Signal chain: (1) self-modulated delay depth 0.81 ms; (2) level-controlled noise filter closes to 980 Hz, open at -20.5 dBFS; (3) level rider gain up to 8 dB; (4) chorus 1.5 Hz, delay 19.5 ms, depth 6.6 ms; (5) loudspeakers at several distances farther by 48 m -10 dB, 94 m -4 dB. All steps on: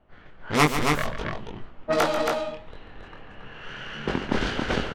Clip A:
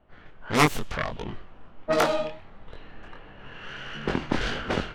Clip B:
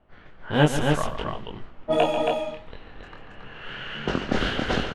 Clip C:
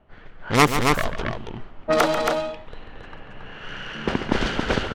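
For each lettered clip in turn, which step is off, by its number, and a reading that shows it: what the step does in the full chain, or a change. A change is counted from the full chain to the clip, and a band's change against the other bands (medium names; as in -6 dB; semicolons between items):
5, echo-to-direct -3.0 dB to none; 1, 8 kHz band -5.0 dB; 4, loudness change +3.0 LU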